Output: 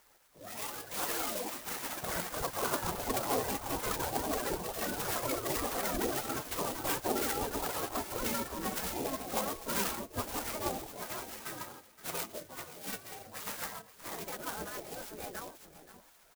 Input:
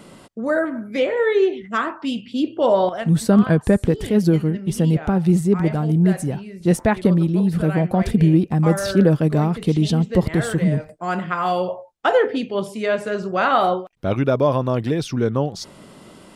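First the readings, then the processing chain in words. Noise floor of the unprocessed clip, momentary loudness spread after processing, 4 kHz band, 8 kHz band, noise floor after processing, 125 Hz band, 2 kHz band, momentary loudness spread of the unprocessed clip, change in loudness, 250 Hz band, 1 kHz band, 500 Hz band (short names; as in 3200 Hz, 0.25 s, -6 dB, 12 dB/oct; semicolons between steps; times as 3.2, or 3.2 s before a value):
-45 dBFS, 10 LU, -7.0 dB, -0.5 dB, -60 dBFS, -28.0 dB, -12.0 dB, 8 LU, -16.0 dB, -23.5 dB, -12.5 dB, -18.5 dB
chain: inharmonic rescaling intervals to 127%; rotary speaker horn 0.7 Hz, later 7 Hz, at 7.71; echoes that change speed 0.246 s, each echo +6 st, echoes 3; on a send: feedback echo 0.524 s, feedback 18%, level -15 dB; on the sum: spectral gate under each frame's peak -15 dB weak; clock jitter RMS 0.098 ms; gain -3.5 dB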